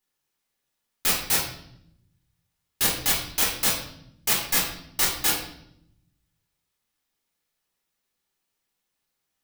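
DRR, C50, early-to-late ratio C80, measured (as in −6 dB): −4.5 dB, 4.5 dB, 8.5 dB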